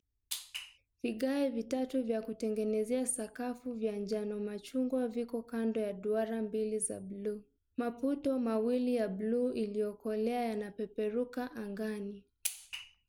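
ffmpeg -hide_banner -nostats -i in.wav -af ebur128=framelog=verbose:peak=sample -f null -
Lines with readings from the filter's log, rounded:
Integrated loudness:
  I:         -35.8 LUFS
  Threshold: -45.8 LUFS
Loudness range:
  LRA:         2.2 LU
  Threshold: -55.4 LUFS
  LRA low:   -36.4 LUFS
  LRA high:  -34.2 LUFS
Sample peak:
  Peak:      -15.5 dBFS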